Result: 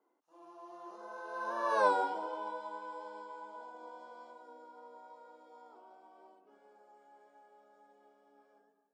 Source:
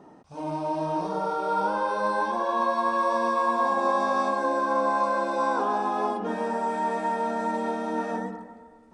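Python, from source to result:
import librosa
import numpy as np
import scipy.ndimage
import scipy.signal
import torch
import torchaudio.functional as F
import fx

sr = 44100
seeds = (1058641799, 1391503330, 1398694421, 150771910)

y = fx.doppler_pass(x, sr, speed_mps=35, closest_m=3.3, pass_at_s=1.83)
y = scipy.signal.sosfilt(scipy.signal.butter(6, 270.0, 'highpass', fs=sr, output='sos'), y)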